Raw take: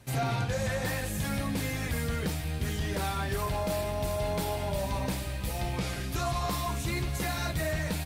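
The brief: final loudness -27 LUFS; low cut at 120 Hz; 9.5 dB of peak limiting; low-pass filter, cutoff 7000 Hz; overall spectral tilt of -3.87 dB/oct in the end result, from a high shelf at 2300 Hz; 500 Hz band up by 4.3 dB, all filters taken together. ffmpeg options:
-af "highpass=120,lowpass=7k,equalizer=f=500:t=o:g=5,highshelf=f=2.3k:g=7.5,volume=7.5dB,alimiter=limit=-18.5dB:level=0:latency=1"

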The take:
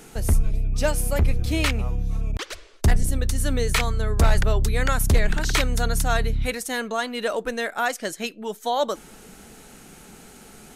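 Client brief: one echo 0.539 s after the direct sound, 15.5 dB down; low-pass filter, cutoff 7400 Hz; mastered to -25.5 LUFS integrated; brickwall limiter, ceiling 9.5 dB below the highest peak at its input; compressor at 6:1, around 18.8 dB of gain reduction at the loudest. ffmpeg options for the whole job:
-af "lowpass=7.4k,acompressor=threshold=-34dB:ratio=6,alimiter=level_in=4.5dB:limit=-24dB:level=0:latency=1,volume=-4.5dB,aecho=1:1:539:0.168,volume=15dB"

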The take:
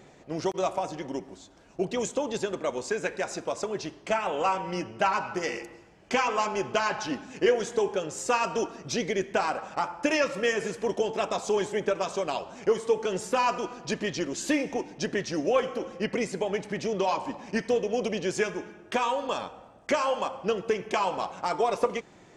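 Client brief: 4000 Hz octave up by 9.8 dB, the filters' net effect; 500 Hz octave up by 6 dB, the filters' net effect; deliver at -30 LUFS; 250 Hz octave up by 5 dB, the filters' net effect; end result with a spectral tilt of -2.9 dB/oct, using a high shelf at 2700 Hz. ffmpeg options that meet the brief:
-af "equalizer=f=250:t=o:g=4.5,equalizer=f=500:t=o:g=5.5,highshelf=f=2.7k:g=7,equalizer=f=4k:t=o:g=7.5,volume=-6.5dB"

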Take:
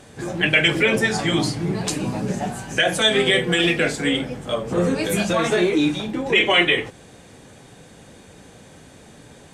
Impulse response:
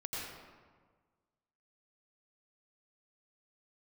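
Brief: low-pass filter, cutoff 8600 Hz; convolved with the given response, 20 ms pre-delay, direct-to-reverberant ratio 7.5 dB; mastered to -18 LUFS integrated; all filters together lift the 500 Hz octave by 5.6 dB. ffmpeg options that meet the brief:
-filter_complex "[0:a]lowpass=8.6k,equalizer=f=500:t=o:g=7,asplit=2[a][b];[1:a]atrim=start_sample=2205,adelay=20[c];[b][c]afir=irnorm=-1:irlink=0,volume=-9.5dB[d];[a][d]amix=inputs=2:normalize=0,volume=-1dB"

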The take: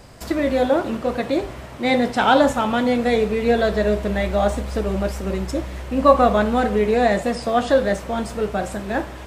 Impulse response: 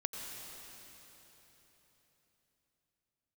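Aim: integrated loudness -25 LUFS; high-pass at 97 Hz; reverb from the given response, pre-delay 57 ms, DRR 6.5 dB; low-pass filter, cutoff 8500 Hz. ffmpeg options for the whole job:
-filter_complex "[0:a]highpass=97,lowpass=8.5k,asplit=2[a][b];[1:a]atrim=start_sample=2205,adelay=57[c];[b][c]afir=irnorm=-1:irlink=0,volume=-8dB[d];[a][d]amix=inputs=2:normalize=0,volume=-5.5dB"

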